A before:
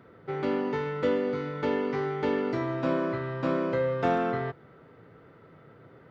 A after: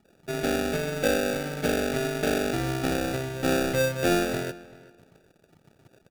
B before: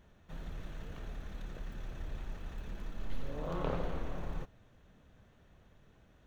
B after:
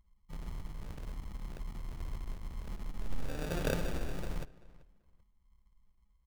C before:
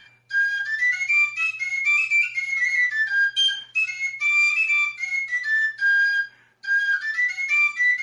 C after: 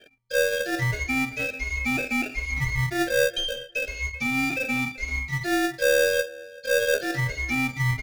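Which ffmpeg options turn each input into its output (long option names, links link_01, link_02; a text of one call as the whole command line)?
ffmpeg -i in.wav -filter_complex "[0:a]anlmdn=0.0251,acrossover=split=1900[link_01][link_02];[link_01]acrusher=samples=42:mix=1:aa=0.000001[link_03];[link_02]acompressor=threshold=-30dB:ratio=6[link_04];[link_03][link_04]amix=inputs=2:normalize=0,asplit=2[link_05][link_06];[link_06]adelay=386,lowpass=frequency=3800:poles=1,volume=-20dB,asplit=2[link_07][link_08];[link_08]adelay=386,lowpass=frequency=3800:poles=1,volume=0.19[link_09];[link_05][link_07][link_09]amix=inputs=3:normalize=0,aeval=exprs='0.178*(cos(1*acos(clip(val(0)/0.178,-1,1)))-cos(1*PI/2))+0.00501*(cos(6*acos(clip(val(0)/0.178,-1,1)))-cos(6*PI/2))+0.00141*(cos(8*acos(clip(val(0)/0.178,-1,1)))-cos(8*PI/2))':channel_layout=same,volume=2dB" out.wav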